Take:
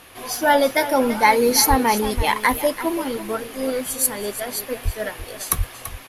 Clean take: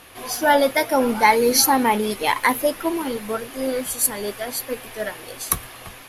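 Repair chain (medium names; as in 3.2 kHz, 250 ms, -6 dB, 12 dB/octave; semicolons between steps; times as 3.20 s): de-plosive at 1.69/2.16/4.84/5.57 s; inverse comb 336 ms -13 dB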